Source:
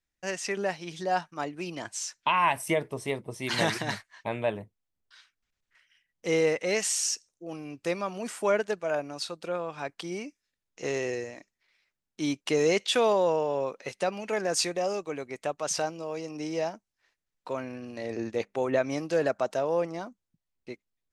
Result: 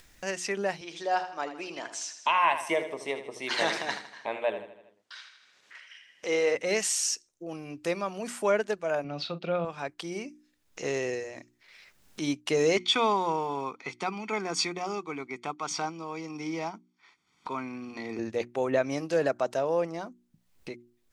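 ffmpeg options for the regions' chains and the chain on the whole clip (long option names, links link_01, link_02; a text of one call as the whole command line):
ffmpeg -i in.wav -filter_complex "[0:a]asettb=1/sr,asplit=3[link_01][link_02][link_03];[link_01]atrim=end=0.814[link_04];[link_02]atrim=start=0.81:end=6.55,asetpts=PTS-STARTPTS,afade=type=in:duration=0.004:curve=qsin,afade=type=out:start_time=5.736:duration=0.004:curve=qsin,highpass=360,lowpass=6900,aecho=1:1:79|158|237|316|395:0.299|0.131|0.0578|0.0254|0.0112,atrim=end_sample=253134[link_05];[link_03]atrim=start=6.546[link_06];[link_04][link_05]acrossfade=duration=0.004:curve1=hsin:curve2=qsin[link_07];[link_07][link_06]acrossfade=duration=0.004:curve1=qsin:curve2=hsin,asettb=1/sr,asplit=3[link_08][link_09][link_10];[link_08]atrim=end=9.044[link_11];[link_09]atrim=start=9.04:end=9.65,asetpts=PTS-STARTPTS,afade=type=in:duration=0.004:curve=qsin,afade=type=out:start_time=0.606:duration=0.004:curve=qsin,acontrast=37,highpass=140,equalizer=frequency=160:width_type=q:width=4:gain=9,equalizer=frequency=310:width_type=q:width=4:gain=-4,equalizer=frequency=470:width_type=q:width=4:gain=-5,equalizer=frequency=990:width_type=q:width=4:gain=-9,equalizer=frequency=1700:width_type=q:width=4:gain=-8,lowpass=frequency=3800:width=0.5412,lowpass=frequency=3800:width=1.3066,asplit=2[link_12][link_13];[link_13]adelay=41,volume=-14dB[link_14];[link_12][link_14]amix=inputs=2:normalize=0,atrim=end_sample=26901[link_15];[link_10]atrim=start=9.646[link_16];[link_11][link_15]acrossfade=duration=0.004:curve1=hsin:curve2=qsin[link_17];[link_17][link_16]acrossfade=duration=0.004:curve1=qsin:curve2=hsin,asettb=1/sr,asplit=3[link_18][link_19][link_20];[link_18]atrim=end=12.774[link_21];[link_19]atrim=start=12.77:end=18.19,asetpts=PTS-STARTPTS,afade=type=in:duration=0.004:curve=qsin,afade=type=out:start_time=5.416:duration=0.004:curve=qsin,acrusher=bits=7:mode=log:mix=0:aa=0.000001,highpass=190,lowpass=4900,aecho=1:1:0.9:0.86,atrim=end_sample=239022[link_22];[link_20]atrim=start=18.186[link_23];[link_21][link_22]acrossfade=duration=0.004:curve1=hsin:curve2=qsin[link_24];[link_24][link_23]acrossfade=duration=0.004:curve1=qsin:curve2=hsin,bandreject=frequency=60:width_type=h:width=6,bandreject=frequency=120:width_type=h:width=6,bandreject=frequency=180:width_type=h:width=6,bandreject=frequency=240:width_type=h:width=6,bandreject=frequency=300:width_type=h:width=6,bandreject=frequency=360:width_type=h:width=6,acompressor=mode=upward:threshold=-35dB:ratio=2.5" out.wav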